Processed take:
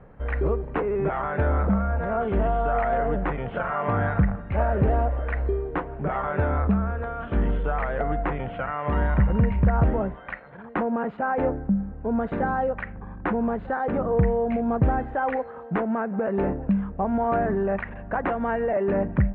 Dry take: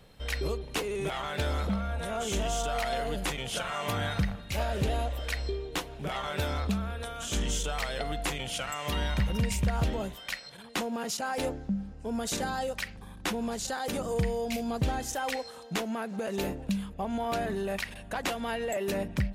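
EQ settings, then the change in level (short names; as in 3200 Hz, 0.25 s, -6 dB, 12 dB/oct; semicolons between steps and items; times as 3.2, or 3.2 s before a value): inverse Chebyshev low-pass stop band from 5400 Hz, stop band 60 dB; +8.0 dB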